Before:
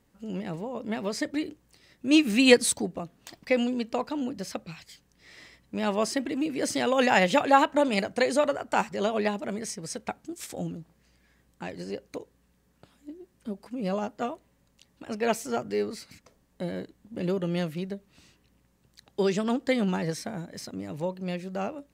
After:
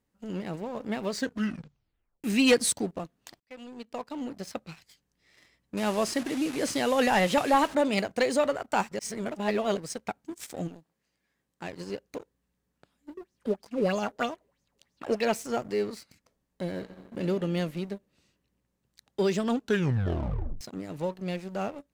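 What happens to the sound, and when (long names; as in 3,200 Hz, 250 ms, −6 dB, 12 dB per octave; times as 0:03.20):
0:01.10: tape stop 1.14 s
0:03.40–0:04.65: fade in
0:05.77–0:07.75: linear delta modulator 64 kbit/s, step −33 dBFS
0:08.99–0:09.77: reverse
0:10.67–0:11.63: high-pass filter 350 Hz → 150 Hz 6 dB per octave
0:13.17–0:15.25: auto-filter bell 3.1 Hz 400–6,300 Hz +17 dB
0:16.70–0:17.21: thrown reverb, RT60 2.4 s, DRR 6 dB
0:19.52: tape stop 1.09 s
whole clip: leveller curve on the samples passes 2; level −8 dB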